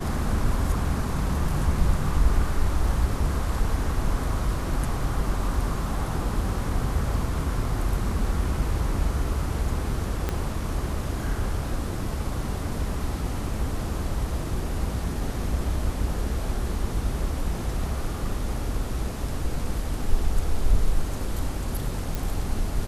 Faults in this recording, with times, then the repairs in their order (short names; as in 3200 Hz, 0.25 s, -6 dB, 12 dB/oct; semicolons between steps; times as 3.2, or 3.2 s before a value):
10.29 pop -13 dBFS
22.15 pop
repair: de-click